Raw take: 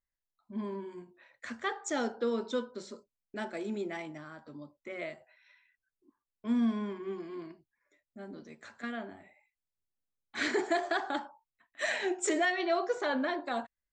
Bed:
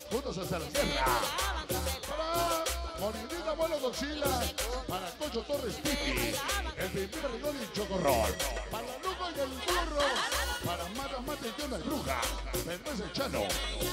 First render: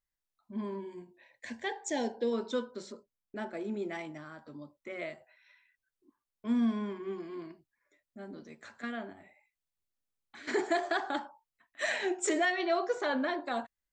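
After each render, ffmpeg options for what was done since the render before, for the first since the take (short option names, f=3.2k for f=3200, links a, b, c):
-filter_complex "[0:a]asettb=1/sr,asplit=3[a][b][c];[a]atrim=end=0.784[d];[b]atrim=start=0.78:end=2.33,asetpts=PTS-STARTPTS,afade=t=in:d=0.004:c=qsin,afade=t=out:st=1.546:d=0.004:c=qsin,asuperstop=centerf=1300:order=4:qfactor=2.1[e];[c]atrim=start=2.326[f];[d][e]acrossfade=d=0.004:c1=hsin:c2=qsin[g];[g][f]acrossfade=d=0.004:c1=qsin:c2=hsin,asettb=1/sr,asplit=3[h][i][j];[h]atrim=end=2.924[k];[i]atrim=start=2.92:end=3.82,asetpts=PTS-STARTPTS,afade=t=in:d=0.004:c=qsin,afade=t=out:st=0.896:d=0.004:c=qsin,highshelf=f=2.4k:g=-8.5[l];[j]atrim=start=3.816[m];[k][l]acrossfade=d=0.004:c1=hsin:c2=qsin[n];[n][m]acrossfade=d=0.004:c1=qsin:c2=hsin,asplit=3[o][p][q];[o]afade=t=out:st=9.12:d=0.02[r];[p]acompressor=threshold=-48dB:ratio=6:attack=3.2:release=140:knee=1:detection=peak,afade=t=in:st=9.12:d=0.02,afade=t=out:st=10.47:d=0.02[s];[q]afade=t=in:st=10.47:d=0.02[t];[r][s][t]amix=inputs=3:normalize=0"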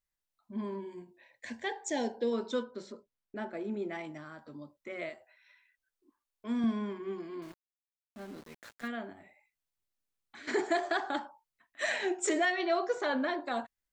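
-filter_complex "[0:a]asettb=1/sr,asplit=3[a][b][c];[a]atrim=end=2.634[d];[b]atrim=start=2.63:end=4.04,asetpts=PTS-STARTPTS,afade=t=in:d=0.004:c=qsin,afade=t=out:st=1.406:d=0.004:c=qsin,highshelf=f=6k:g=-10.5[e];[c]atrim=start=4.036[f];[d][e]acrossfade=d=0.004:c1=hsin:c2=qsin[g];[g][f]acrossfade=d=0.004:c1=qsin:c2=hsin,asettb=1/sr,asplit=3[h][i][j];[h]atrim=end=5.094[k];[i]atrim=start=5.09:end=6.64,asetpts=PTS-STARTPTS,afade=t=in:d=0.004:c=qsin,afade=t=out:st=1.546:d=0.004:c=qsin,equalizer=f=150:t=o:w=0.77:g=-14[l];[j]atrim=start=6.636[m];[k][l]acrossfade=d=0.004:c1=hsin:c2=qsin[n];[n][m]acrossfade=d=0.004:c1=qsin:c2=hsin,asettb=1/sr,asplit=3[o][p][q];[o]atrim=end=7.424[r];[p]atrim=start=7.42:end=8.88,asetpts=PTS-STARTPTS,afade=t=in:d=0.004:c=qsin,afade=t=out:st=1.456:d=0.004:c=qsin,aeval=exprs='val(0)*gte(abs(val(0)),0.00355)':c=same[s];[q]atrim=start=8.876[t];[r][s]acrossfade=d=0.004:c1=hsin:c2=qsin[u];[u][t]acrossfade=d=0.004:c1=qsin:c2=hsin"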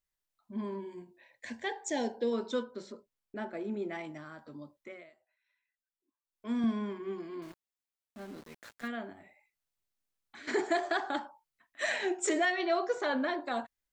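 -filter_complex "[0:a]asplit=3[a][b][c];[a]atrim=end=5.04,asetpts=PTS-STARTPTS,afade=t=out:st=4.79:d=0.25:silence=0.141254[d];[b]atrim=start=5.04:end=6.22,asetpts=PTS-STARTPTS,volume=-17dB[e];[c]atrim=start=6.22,asetpts=PTS-STARTPTS,afade=t=in:d=0.25:silence=0.141254[f];[d][e][f]concat=n=3:v=0:a=1"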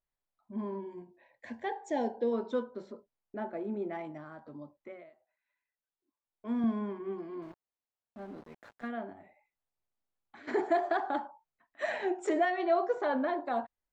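-af "lowpass=f=1.2k:p=1,equalizer=f=780:w=1.4:g=5"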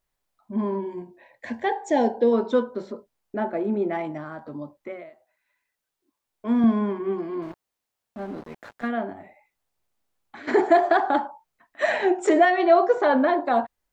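-af "volume=11dB"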